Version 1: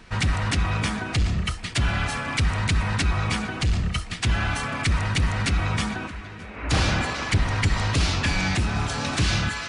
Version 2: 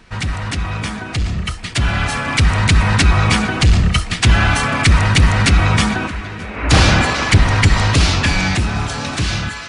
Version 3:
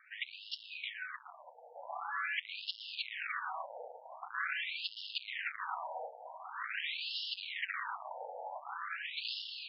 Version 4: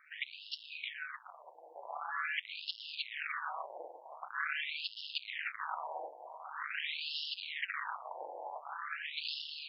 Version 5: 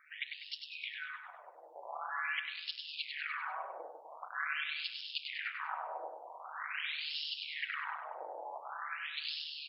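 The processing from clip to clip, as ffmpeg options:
-af "dynaudnorm=f=480:g=9:m=11.5dB,volume=1.5dB"
-af "aeval=exprs='(tanh(12.6*val(0)+0.55)-tanh(0.55))/12.6':c=same,afftfilt=real='re*between(b*sr/1024,640*pow(3900/640,0.5+0.5*sin(2*PI*0.45*pts/sr))/1.41,640*pow(3900/640,0.5+0.5*sin(2*PI*0.45*pts/sr))*1.41)':imag='im*between(b*sr/1024,640*pow(3900/640,0.5+0.5*sin(2*PI*0.45*pts/sr))/1.41,640*pow(3900/640,0.5+0.5*sin(2*PI*0.45*pts/sr))*1.41)':win_size=1024:overlap=0.75,volume=-6.5dB"
-af "tremolo=f=150:d=0.571,volume=2.5dB"
-af "aecho=1:1:99|198|297|396|495:0.501|0.205|0.0842|0.0345|0.0142,volume=-1dB"

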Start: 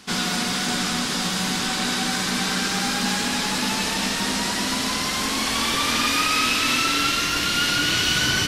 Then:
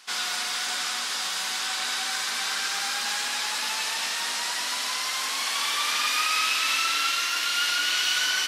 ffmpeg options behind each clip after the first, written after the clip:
-af "highpass=870,volume=-3dB"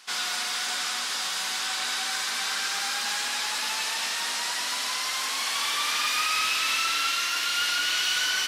-af "asoftclip=type=tanh:threshold=-16.5dB"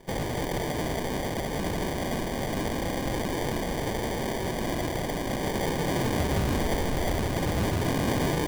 -af "acrusher=samples=33:mix=1:aa=0.000001"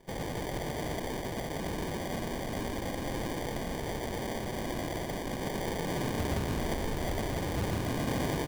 -af "aecho=1:1:119:0.631,volume=-7dB"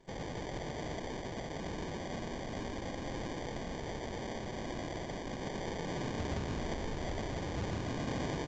-af "volume=-5dB" -ar 16000 -c:a pcm_alaw

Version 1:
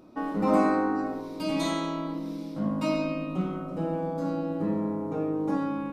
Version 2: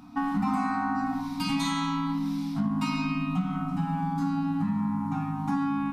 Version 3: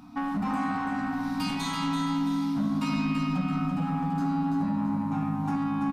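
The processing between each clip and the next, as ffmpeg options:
-af "afftfilt=real='re*(1-between(b*sr/4096,300,670))':imag='im*(1-between(b*sr/4096,300,670))':win_size=4096:overlap=0.75,acompressor=threshold=-31dB:ratio=6,volume=7dB"
-filter_complex "[0:a]asoftclip=type=tanh:threshold=-23dB,asplit=2[a][b];[b]aecho=0:1:334|668|1002|1336:0.501|0.185|0.0686|0.0254[c];[a][c]amix=inputs=2:normalize=0"

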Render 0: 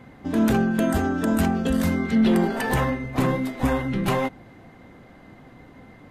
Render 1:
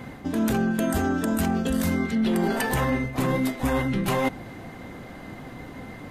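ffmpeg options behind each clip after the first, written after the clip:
-af "highshelf=f=5k:g=7,areverse,acompressor=threshold=-29dB:ratio=6,areverse,volume=7.5dB"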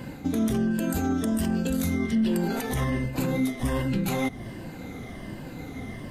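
-af "afftfilt=real='re*pow(10,8/40*sin(2*PI*(1.3*log(max(b,1)*sr/1024/100)/log(2)-(-1.3)*(pts-256)/sr)))':imag='im*pow(10,8/40*sin(2*PI*(1.3*log(max(b,1)*sr/1024/100)/log(2)-(-1.3)*(pts-256)/sr)))':win_size=1024:overlap=0.75,equalizer=f=1.1k:w=0.54:g=-7,alimiter=limit=-20.5dB:level=0:latency=1:release=196,volume=3dB"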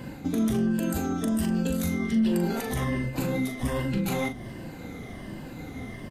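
-filter_complex "[0:a]asplit=2[a][b];[b]adelay=40,volume=-8dB[c];[a][c]amix=inputs=2:normalize=0,volume=-1.5dB"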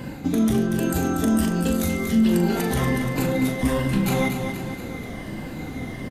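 -af "aecho=1:1:238|476|714|952|1190|1428|1666:0.447|0.241|0.13|0.0703|0.038|0.0205|0.0111,volume=5dB"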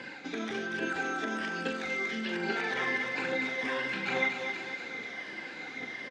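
-filter_complex "[0:a]acrossover=split=2900[a][b];[b]acompressor=threshold=-40dB:ratio=4:attack=1:release=60[c];[a][c]amix=inputs=2:normalize=0,flanger=delay=0:depth=3.1:regen=72:speed=1.2:shape=triangular,highpass=500,equalizer=f=640:t=q:w=4:g=-6,equalizer=f=1.1k:t=q:w=4:g=-4,equalizer=f=1.6k:t=q:w=4:g=8,equalizer=f=2.3k:t=q:w=4:g=8,equalizer=f=3.6k:t=q:w=4:g=4,equalizer=f=5.2k:t=q:w=4:g=4,lowpass=f=6.1k:w=0.5412,lowpass=f=6.1k:w=1.3066"

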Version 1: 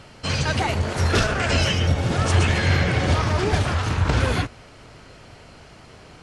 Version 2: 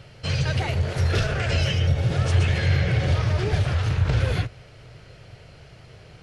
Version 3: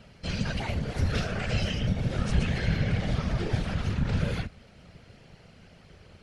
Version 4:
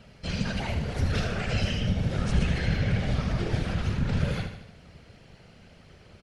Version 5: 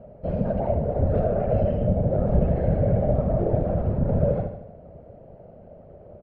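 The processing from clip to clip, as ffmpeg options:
-filter_complex "[0:a]equalizer=f=125:t=o:w=1:g=8,equalizer=f=250:t=o:w=1:g=-10,equalizer=f=500:t=o:w=1:g=3,equalizer=f=1k:t=o:w=1:g=-8,equalizer=f=8k:t=o:w=1:g=-7,asplit=2[a][b];[b]alimiter=limit=-15dB:level=0:latency=1:release=92,volume=-0.5dB[c];[a][c]amix=inputs=2:normalize=0,volume=-7dB"
-af "afftfilt=real='hypot(re,im)*cos(2*PI*random(0))':imag='hypot(re,im)*sin(2*PI*random(1))':win_size=512:overlap=0.75"
-af "aecho=1:1:78|156|234|312|390|468:0.376|0.195|0.102|0.0528|0.0275|0.0143"
-af "lowpass=f=610:t=q:w=4.9,volume=3dB"

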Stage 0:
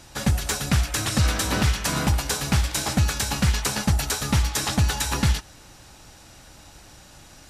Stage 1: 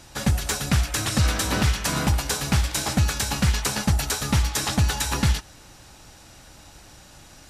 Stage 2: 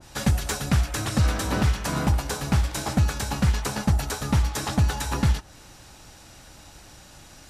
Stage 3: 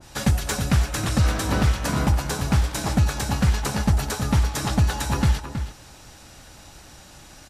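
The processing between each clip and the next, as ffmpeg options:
-af anull
-af "adynamicequalizer=threshold=0.00794:dfrequency=1600:dqfactor=0.7:tfrequency=1600:tqfactor=0.7:attack=5:release=100:ratio=0.375:range=3.5:mode=cutabove:tftype=highshelf"
-filter_complex "[0:a]asplit=2[a][b];[b]adelay=320.7,volume=-9dB,highshelf=f=4k:g=-7.22[c];[a][c]amix=inputs=2:normalize=0,volume=1.5dB"

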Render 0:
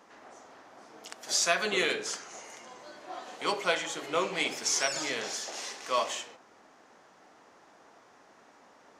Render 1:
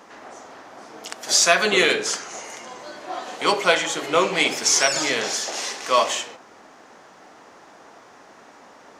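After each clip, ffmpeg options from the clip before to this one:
-af "acontrast=78,volume=3.5dB"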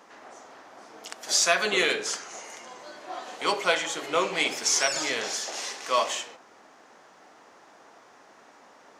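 -af "lowshelf=f=220:g=-6,volume=-5.5dB"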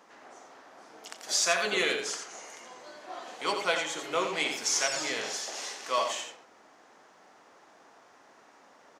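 -af "aecho=1:1:87:0.422,volume=-4.5dB"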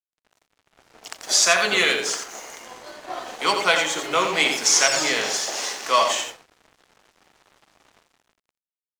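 -filter_complex "[0:a]acrossover=split=240|640|7400[a][b][c][d];[b]alimiter=level_in=11.5dB:limit=-24dB:level=0:latency=1,volume=-11.5dB[e];[a][e][c][d]amix=inputs=4:normalize=0,dynaudnorm=f=180:g=9:m=10dB,aeval=exprs='sgn(val(0))*max(abs(val(0))-0.00631,0)':c=same,volume=1.5dB"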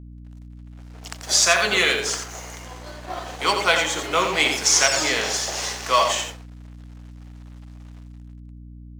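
-filter_complex "[0:a]asplit=2[a][b];[b]acrusher=bits=5:mode=log:mix=0:aa=0.000001,volume=-7dB[c];[a][c]amix=inputs=2:normalize=0,aeval=exprs='val(0)+0.0158*(sin(2*PI*60*n/s)+sin(2*PI*2*60*n/s)/2+sin(2*PI*3*60*n/s)/3+sin(2*PI*4*60*n/s)/4+sin(2*PI*5*60*n/s)/5)':c=same,volume=-3dB"

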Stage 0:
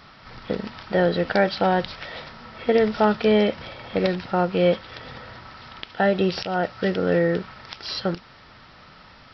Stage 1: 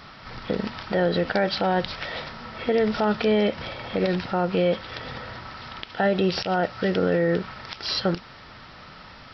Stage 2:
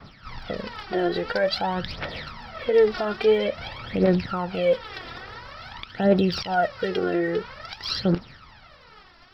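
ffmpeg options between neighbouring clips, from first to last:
-af "alimiter=limit=-16.5dB:level=0:latency=1:release=96,volume=3.5dB"
-af "aphaser=in_gain=1:out_gain=1:delay=3:decay=0.7:speed=0.49:type=triangular,agate=range=-33dB:threshold=-37dB:ratio=3:detection=peak,volume=-4dB"

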